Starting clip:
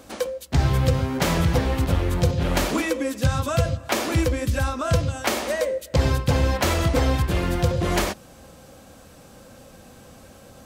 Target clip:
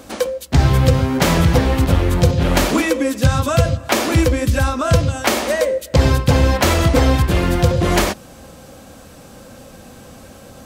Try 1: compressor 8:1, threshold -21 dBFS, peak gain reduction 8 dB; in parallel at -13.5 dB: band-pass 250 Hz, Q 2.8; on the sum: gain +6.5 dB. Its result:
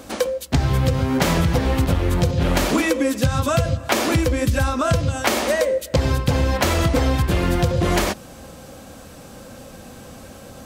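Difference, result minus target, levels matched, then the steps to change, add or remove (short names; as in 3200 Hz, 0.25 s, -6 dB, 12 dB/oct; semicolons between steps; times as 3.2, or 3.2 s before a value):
compressor: peak gain reduction +8 dB
remove: compressor 8:1, threshold -21 dBFS, peak gain reduction 8 dB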